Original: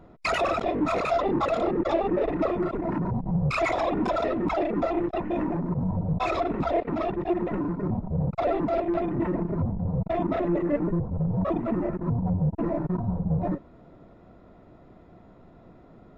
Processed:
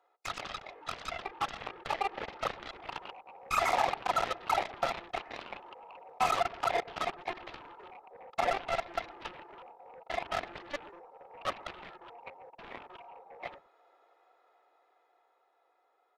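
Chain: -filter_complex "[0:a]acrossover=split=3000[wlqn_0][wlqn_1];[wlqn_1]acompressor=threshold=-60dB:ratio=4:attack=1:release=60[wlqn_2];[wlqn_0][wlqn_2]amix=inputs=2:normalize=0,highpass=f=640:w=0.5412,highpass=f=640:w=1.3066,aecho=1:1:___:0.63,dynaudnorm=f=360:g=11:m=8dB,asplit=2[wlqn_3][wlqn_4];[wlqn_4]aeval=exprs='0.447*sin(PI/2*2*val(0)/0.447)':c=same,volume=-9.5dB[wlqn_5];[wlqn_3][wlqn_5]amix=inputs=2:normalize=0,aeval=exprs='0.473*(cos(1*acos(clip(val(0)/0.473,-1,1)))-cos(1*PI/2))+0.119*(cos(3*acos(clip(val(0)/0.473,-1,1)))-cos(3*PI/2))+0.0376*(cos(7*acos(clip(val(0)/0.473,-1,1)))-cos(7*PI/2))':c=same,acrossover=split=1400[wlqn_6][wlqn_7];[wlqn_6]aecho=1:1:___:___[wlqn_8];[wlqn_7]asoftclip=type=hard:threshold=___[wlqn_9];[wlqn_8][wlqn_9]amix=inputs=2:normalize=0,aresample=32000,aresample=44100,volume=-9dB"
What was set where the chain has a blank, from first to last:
2.4, 122, 0.119, -24.5dB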